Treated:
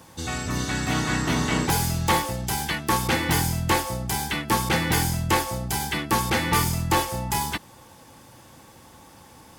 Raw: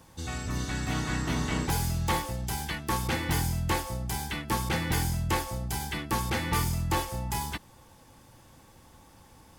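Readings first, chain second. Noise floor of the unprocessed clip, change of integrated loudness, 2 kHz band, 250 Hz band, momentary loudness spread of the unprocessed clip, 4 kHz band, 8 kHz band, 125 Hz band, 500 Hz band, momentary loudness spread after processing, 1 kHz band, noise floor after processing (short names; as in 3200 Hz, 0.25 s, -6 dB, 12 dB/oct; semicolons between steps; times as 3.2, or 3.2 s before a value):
-56 dBFS, +6.0 dB, +7.5 dB, +6.0 dB, 5 LU, +7.5 dB, +7.5 dB, +3.5 dB, +7.0 dB, 5 LU, +7.5 dB, -50 dBFS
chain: HPF 130 Hz 6 dB/oct; gain +7.5 dB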